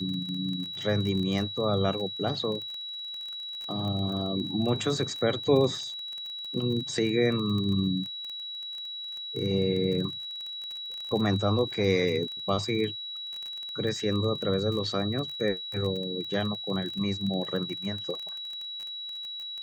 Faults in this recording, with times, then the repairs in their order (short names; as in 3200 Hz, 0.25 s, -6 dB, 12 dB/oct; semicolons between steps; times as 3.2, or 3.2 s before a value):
crackle 24/s -33 dBFS
tone 3900 Hz -35 dBFS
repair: de-click; notch 3900 Hz, Q 30